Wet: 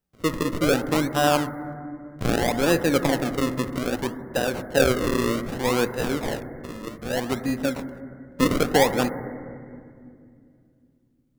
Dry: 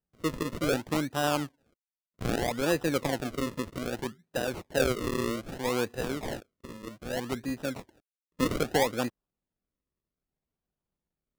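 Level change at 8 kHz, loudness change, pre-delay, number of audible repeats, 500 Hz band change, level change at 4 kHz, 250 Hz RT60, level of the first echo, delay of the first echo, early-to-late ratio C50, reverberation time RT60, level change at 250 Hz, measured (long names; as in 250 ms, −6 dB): +6.5 dB, +7.0 dB, 4 ms, no echo audible, +7.0 dB, +6.5 dB, 3.7 s, no echo audible, no echo audible, 11.5 dB, 2.3 s, +7.5 dB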